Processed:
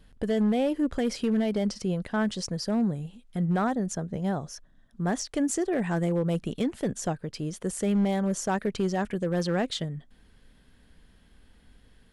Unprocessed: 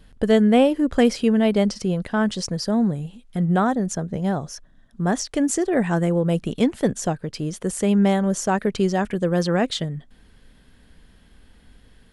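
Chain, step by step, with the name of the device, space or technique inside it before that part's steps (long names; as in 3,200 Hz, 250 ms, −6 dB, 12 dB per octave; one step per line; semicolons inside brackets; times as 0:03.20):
limiter into clipper (brickwall limiter −11.5 dBFS, peak gain reduction 6 dB; hard clipping −14 dBFS, distortion −23 dB)
level −5.5 dB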